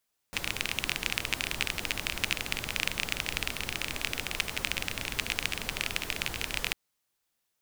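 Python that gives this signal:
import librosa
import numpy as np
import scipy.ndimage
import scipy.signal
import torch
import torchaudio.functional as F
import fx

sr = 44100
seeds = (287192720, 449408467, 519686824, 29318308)

y = fx.rain(sr, seeds[0], length_s=6.4, drops_per_s=24.0, hz=2500.0, bed_db=-4.0)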